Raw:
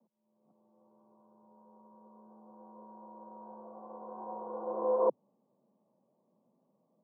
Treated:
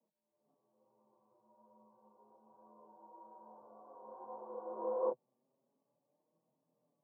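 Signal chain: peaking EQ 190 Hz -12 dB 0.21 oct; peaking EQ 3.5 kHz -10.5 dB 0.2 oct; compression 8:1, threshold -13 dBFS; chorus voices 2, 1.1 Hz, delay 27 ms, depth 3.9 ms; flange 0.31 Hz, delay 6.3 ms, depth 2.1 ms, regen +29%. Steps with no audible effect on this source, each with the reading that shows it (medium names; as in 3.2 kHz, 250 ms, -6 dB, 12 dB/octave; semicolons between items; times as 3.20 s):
peaking EQ 3.5 kHz: input has nothing above 1.1 kHz; compression, threshold -13 dBFS: peak at its input -17.5 dBFS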